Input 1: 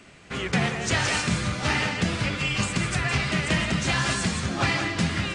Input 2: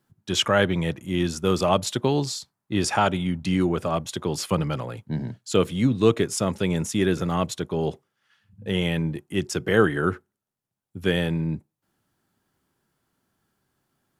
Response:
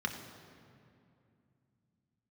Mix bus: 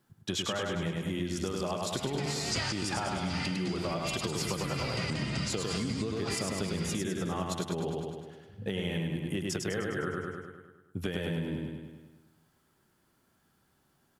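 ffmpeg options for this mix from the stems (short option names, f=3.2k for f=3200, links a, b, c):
-filter_complex "[0:a]equalizer=f=4.8k:w=7.8:g=14.5,bandreject=f=1.7k:w=12,adelay=1650,volume=-1.5dB[a];[1:a]acompressor=threshold=-28dB:ratio=6,volume=1dB,asplit=3[b][c][d];[c]volume=-3dB[e];[d]apad=whole_len=308683[f];[a][f]sidechaincompress=threshold=-35dB:ratio=8:attack=5.7:release=323[g];[e]aecho=0:1:102|204|306|408|510|612|714|816|918:1|0.59|0.348|0.205|0.121|0.0715|0.0422|0.0249|0.0147[h];[g][b][h]amix=inputs=3:normalize=0,acompressor=threshold=-29dB:ratio=6"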